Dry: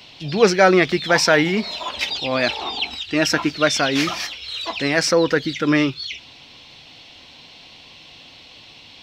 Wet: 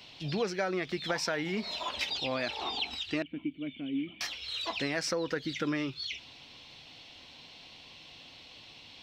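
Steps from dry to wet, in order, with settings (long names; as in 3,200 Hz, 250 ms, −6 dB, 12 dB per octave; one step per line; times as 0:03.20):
0:03.22–0:04.21: formant resonators in series i
downward compressor 8 to 1, threshold −21 dBFS, peak gain reduction 13 dB
level −7.5 dB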